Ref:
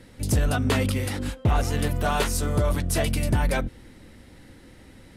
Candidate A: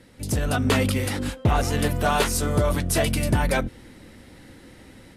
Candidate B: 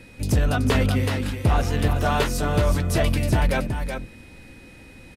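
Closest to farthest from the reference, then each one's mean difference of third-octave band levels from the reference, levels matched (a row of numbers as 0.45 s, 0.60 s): A, B; 1.5 dB, 3.0 dB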